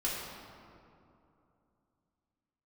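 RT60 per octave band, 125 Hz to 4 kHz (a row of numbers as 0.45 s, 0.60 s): 3.4 s, 3.3 s, 2.8 s, 2.7 s, 1.8 s, 1.3 s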